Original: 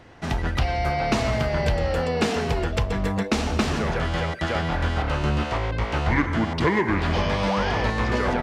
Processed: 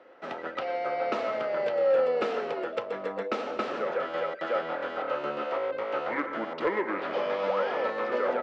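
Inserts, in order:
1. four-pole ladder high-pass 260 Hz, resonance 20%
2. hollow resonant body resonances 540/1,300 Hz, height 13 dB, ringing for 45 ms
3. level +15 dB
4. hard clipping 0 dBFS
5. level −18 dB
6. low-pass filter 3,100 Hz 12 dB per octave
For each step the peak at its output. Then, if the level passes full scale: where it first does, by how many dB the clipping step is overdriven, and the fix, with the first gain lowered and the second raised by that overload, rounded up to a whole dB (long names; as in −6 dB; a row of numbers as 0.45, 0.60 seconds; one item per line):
−14.0, −10.0, +5.0, 0.0, −18.0, −17.5 dBFS
step 3, 5.0 dB
step 3 +10 dB, step 5 −13 dB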